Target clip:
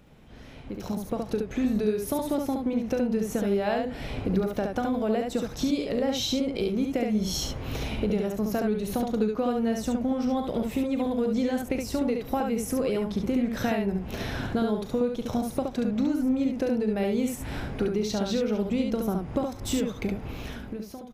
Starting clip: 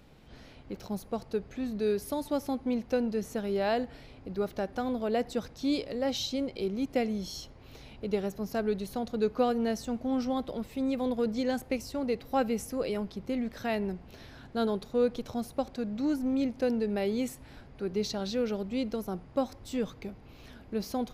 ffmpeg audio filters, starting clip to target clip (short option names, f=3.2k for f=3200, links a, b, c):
-filter_complex "[0:a]equalizer=f=4.5k:t=o:w=0.38:g=-6.5,acompressor=threshold=-41dB:ratio=12,equalizer=f=170:t=o:w=0.94:g=3,asplit=2[a][b];[b]aecho=0:1:38|70:0.237|0.631[c];[a][c]amix=inputs=2:normalize=0,dynaudnorm=f=140:g=13:m=15.5dB"